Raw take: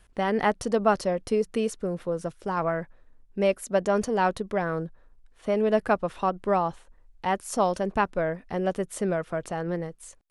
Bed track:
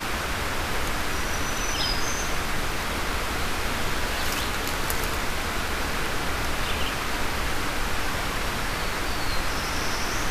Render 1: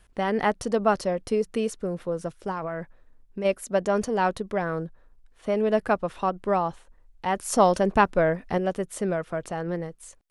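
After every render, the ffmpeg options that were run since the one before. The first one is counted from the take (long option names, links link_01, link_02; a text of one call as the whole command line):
ffmpeg -i in.wav -filter_complex "[0:a]asplit=3[link_01][link_02][link_03];[link_01]afade=type=out:start_time=2.51:duration=0.02[link_04];[link_02]acompressor=threshold=-27dB:ratio=6:attack=3.2:release=140:knee=1:detection=peak,afade=type=in:start_time=2.51:duration=0.02,afade=type=out:start_time=3.44:duration=0.02[link_05];[link_03]afade=type=in:start_time=3.44:duration=0.02[link_06];[link_04][link_05][link_06]amix=inputs=3:normalize=0,asettb=1/sr,asplit=3[link_07][link_08][link_09];[link_07]atrim=end=7.364[link_10];[link_08]atrim=start=7.36:end=8.58,asetpts=PTS-STARTPTS,afade=type=in:duration=0.004:curve=qsin,afade=type=out:start_time=1.216:duration=0.004:curve=qsin,acontrast=34[link_11];[link_09]atrim=start=8.576[link_12];[link_10][link_11]acrossfade=duration=0.004:curve1=hsin:curve2=qsin[link_13];[link_13][link_12]acrossfade=duration=0.004:curve1=qsin:curve2=hsin" out.wav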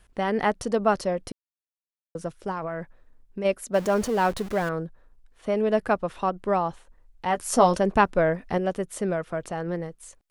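ffmpeg -i in.wav -filter_complex "[0:a]asettb=1/sr,asplit=3[link_01][link_02][link_03];[link_01]atrim=end=3.744[link_04];[link_02]atrim=start=3.74:end=4.69,asetpts=PTS-STARTPTS,afade=type=in:duration=0.004:curve=qsin,afade=type=out:start_time=0.946:duration=0.004:curve=qsin,aeval=exprs='val(0)+0.5*0.0211*sgn(val(0))':channel_layout=same[link_05];[link_03]atrim=start=4.686[link_06];[link_04][link_05]acrossfade=duration=0.004:curve1=hsin:curve2=qsin[link_07];[link_07][link_06]acrossfade=duration=0.004:curve1=qsin:curve2=hsin,asettb=1/sr,asplit=3[link_08][link_09][link_10];[link_08]atrim=end=7.294[link_11];[link_09]atrim=start=7.29:end=7.76,asetpts=PTS-STARTPTS,afade=type=in:duration=0.004:curve=qsin,afade=type=out:start_time=0.466:duration=0.004:curve=qsin,asplit=2[link_12][link_13];[link_13]adelay=12,volume=-7dB[link_14];[link_12][link_14]amix=inputs=2:normalize=0,atrim=end_sample=20727[link_15];[link_10]atrim=start=7.756[link_16];[link_11][link_15]acrossfade=duration=0.004:curve1=hsin:curve2=qsin[link_17];[link_17][link_16]acrossfade=duration=0.004:curve1=qsin:curve2=hsin,asplit=3[link_18][link_19][link_20];[link_18]atrim=end=1.32,asetpts=PTS-STARTPTS,afade=type=out:start_time=1.316:duration=0.004:curve=hsin[link_21];[link_19]atrim=start=1.32:end=2.15,asetpts=PTS-STARTPTS,volume=0[link_22];[link_20]atrim=start=2.15,asetpts=PTS-STARTPTS,afade=type=in:duration=0.004:curve=hsin[link_23];[link_21][link_22][link_23]concat=n=3:v=0:a=1" out.wav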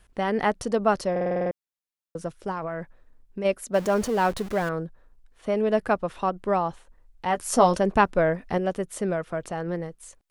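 ffmpeg -i in.wav -filter_complex "[0:a]asplit=9[link_01][link_02][link_03][link_04][link_05][link_06][link_07][link_08][link_09];[link_01]atrim=end=1.162[link_10];[link_02]atrim=start=1.108:end=1.162[link_11];[link_03]atrim=start=1.108:end=1.162[link_12];[link_04]atrim=start=1.108:end=1.162[link_13];[link_05]atrim=start=1.108:end=1.162[link_14];[link_06]atrim=start=1.108:end=1.162[link_15];[link_07]atrim=start=1.108:end=1.162[link_16];[link_08]atrim=start=1.108:end=1.162[link_17];[link_09]atrim=start=1.508[link_18];[link_10][link_11]acrossfade=duration=0.004:curve1=hsin:curve2=hsin[link_19];[link_19][link_12]acrossfade=duration=0.004:curve1=hsin:curve2=hsin[link_20];[link_20][link_13]acrossfade=duration=0.004:curve1=hsin:curve2=hsin[link_21];[link_21][link_14]acrossfade=duration=0.004:curve1=hsin:curve2=hsin[link_22];[link_22][link_15]acrossfade=duration=0.004:curve1=hsin:curve2=hsin[link_23];[link_23][link_16]acrossfade=duration=0.004:curve1=hsin:curve2=hsin[link_24];[link_24][link_17]acrossfade=duration=0.004:curve1=hsin:curve2=hsin[link_25];[link_25][link_18]acrossfade=duration=0.004:curve1=hsin:curve2=hsin" out.wav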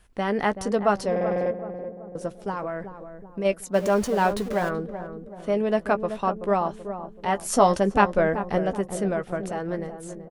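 ffmpeg -i in.wav -filter_complex "[0:a]asplit=2[link_01][link_02];[link_02]adelay=15,volume=-11.5dB[link_03];[link_01][link_03]amix=inputs=2:normalize=0,asplit=2[link_04][link_05];[link_05]adelay=380,lowpass=frequency=830:poles=1,volume=-8.5dB,asplit=2[link_06][link_07];[link_07]adelay=380,lowpass=frequency=830:poles=1,volume=0.55,asplit=2[link_08][link_09];[link_09]adelay=380,lowpass=frequency=830:poles=1,volume=0.55,asplit=2[link_10][link_11];[link_11]adelay=380,lowpass=frequency=830:poles=1,volume=0.55,asplit=2[link_12][link_13];[link_13]adelay=380,lowpass=frequency=830:poles=1,volume=0.55,asplit=2[link_14][link_15];[link_15]adelay=380,lowpass=frequency=830:poles=1,volume=0.55,asplit=2[link_16][link_17];[link_17]adelay=380,lowpass=frequency=830:poles=1,volume=0.55[link_18];[link_04][link_06][link_08][link_10][link_12][link_14][link_16][link_18]amix=inputs=8:normalize=0" out.wav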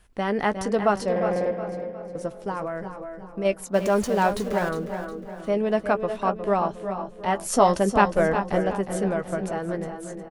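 ffmpeg -i in.wav -af "aecho=1:1:359|718|1077|1436:0.316|0.117|0.0433|0.016" out.wav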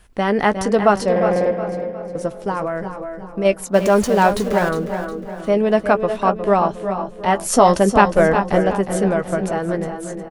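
ffmpeg -i in.wav -af "volume=7dB,alimiter=limit=-1dB:level=0:latency=1" out.wav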